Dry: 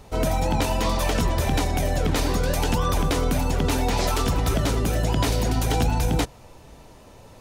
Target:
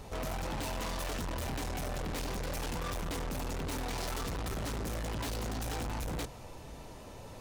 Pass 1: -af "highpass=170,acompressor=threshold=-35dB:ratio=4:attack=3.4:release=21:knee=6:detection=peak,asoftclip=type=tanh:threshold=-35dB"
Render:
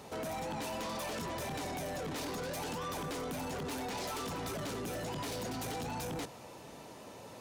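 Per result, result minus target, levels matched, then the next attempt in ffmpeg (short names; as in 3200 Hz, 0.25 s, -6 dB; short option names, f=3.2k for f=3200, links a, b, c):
compressor: peak gain reduction +12.5 dB; 125 Hz band -4.0 dB
-af "highpass=170,asoftclip=type=tanh:threshold=-35dB"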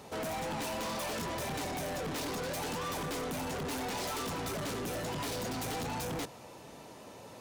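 125 Hz band -4.5 dB
-af "asoftclip=type=tanh:threshold=-35dB"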